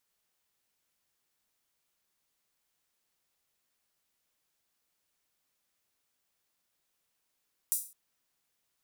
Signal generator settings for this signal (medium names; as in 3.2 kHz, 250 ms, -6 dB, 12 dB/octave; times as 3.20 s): open hi-hat length 0.21 s, high-pass 8.7 kHz, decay 0.37 s